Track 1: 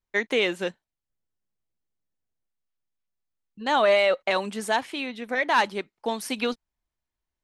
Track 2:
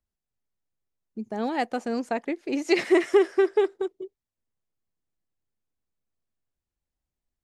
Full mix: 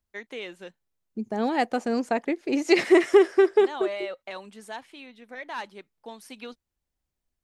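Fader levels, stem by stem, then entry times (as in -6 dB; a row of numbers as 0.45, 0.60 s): -13.5, +2.5 dB; 0.00, 0.00 s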